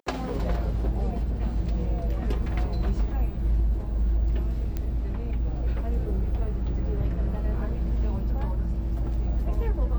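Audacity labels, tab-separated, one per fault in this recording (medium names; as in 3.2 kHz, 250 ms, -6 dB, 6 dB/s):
4.770000	4.770000	pop -18 dBFS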